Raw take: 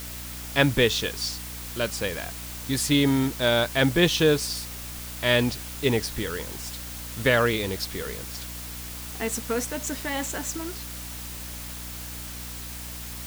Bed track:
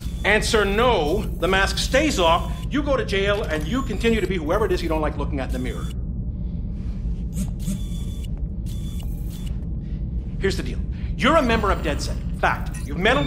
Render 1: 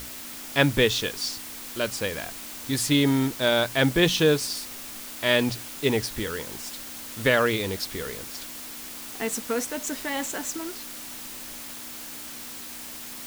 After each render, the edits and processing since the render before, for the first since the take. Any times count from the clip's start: hum notches 60/120/180 Hz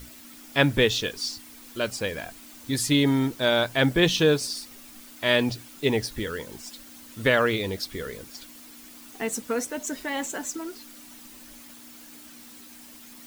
noise reduction 10 dB, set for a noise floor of -39 dBFS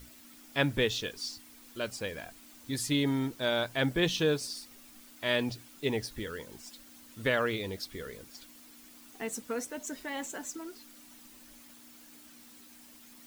trim -7.5 dB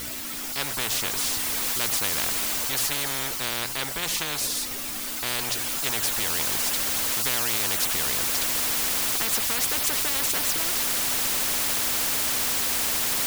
gain riding 2 s; spectrum-flattening compressor 10:1

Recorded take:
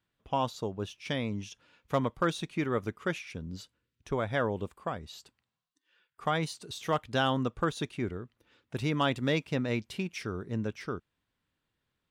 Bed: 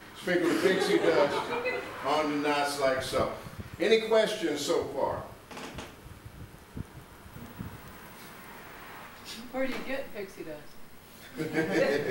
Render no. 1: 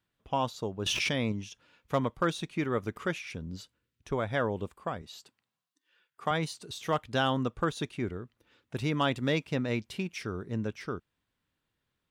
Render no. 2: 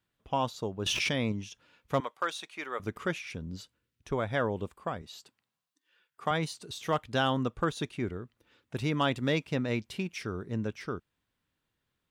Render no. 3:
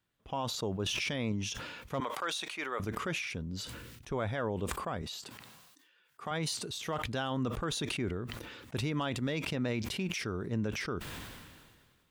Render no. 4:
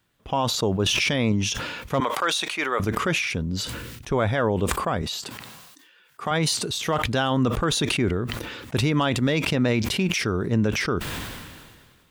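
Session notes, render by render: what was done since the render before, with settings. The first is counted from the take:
0.86–1.32 s: level flattener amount 100%; 2.96–3.56 s: upward compressor, threshold -35 dBFS; 5.02–6.31 s: high-pass 140 Hz
2.00–2.80 s: high-pass 690 Hz
peak limiter -25 dBFS, peak gain reduction 9.5 dB; decay stretcher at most 33 dB/s
trim +11.5 dB

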